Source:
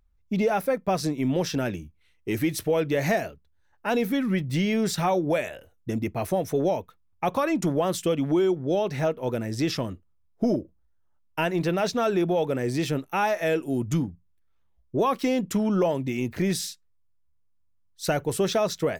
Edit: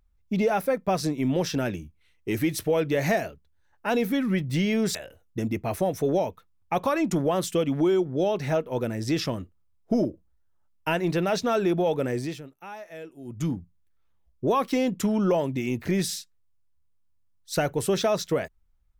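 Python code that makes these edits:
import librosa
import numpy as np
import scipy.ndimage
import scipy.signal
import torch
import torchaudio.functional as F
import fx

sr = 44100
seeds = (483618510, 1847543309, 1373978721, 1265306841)

y = fx.edit(x, sr, fx.cut(start_s=4.95, length_s=0.51),
    fx.fade_down_up(start_s=12.61, length_s=1.46, db=-16.0, fade_s=0.32), tone=tone)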